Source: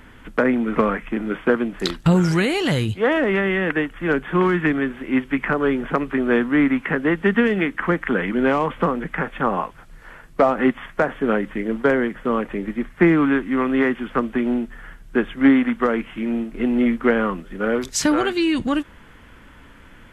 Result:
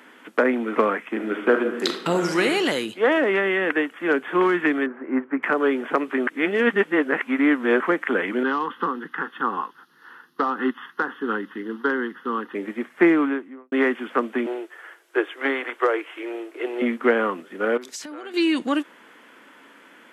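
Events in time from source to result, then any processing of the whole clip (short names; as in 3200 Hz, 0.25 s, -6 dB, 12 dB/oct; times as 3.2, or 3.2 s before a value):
1.09–2.45 reverb throw, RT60 1 s, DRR 6 dB
4.86–5.43 LPF 1600 Hz 24 dB/oct
6.27–7.8 reverse
8.43–12.55 fixed phaser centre 2300 Hz, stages 6
13.05–13.72 studio fade out
14.46–16.82 steep high-pass 310 Hz 72 dB/oct
17.77–18.34 compressor 16:1, threshold -31 dBFS
whole clip: HPF 270 Hz 24 dB/oct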